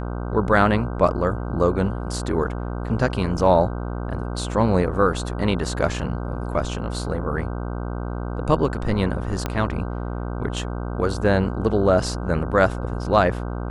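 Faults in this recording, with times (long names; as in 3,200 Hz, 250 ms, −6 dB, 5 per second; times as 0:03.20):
mains buzz 60 Hz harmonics 26 −28 dBFS
0:09.46: click −10 dBFS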